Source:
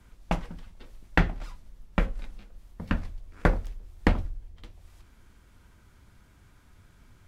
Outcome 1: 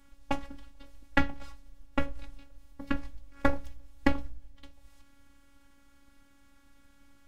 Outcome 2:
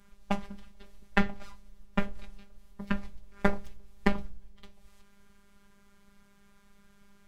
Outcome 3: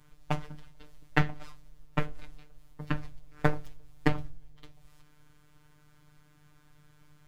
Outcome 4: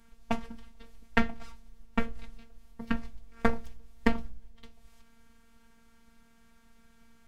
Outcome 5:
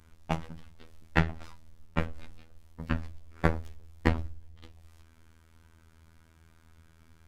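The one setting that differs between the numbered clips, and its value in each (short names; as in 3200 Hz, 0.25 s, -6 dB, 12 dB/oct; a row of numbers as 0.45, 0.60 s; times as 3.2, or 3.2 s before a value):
robotiser, frequency: 280, 200, 150, 230, 81 Hz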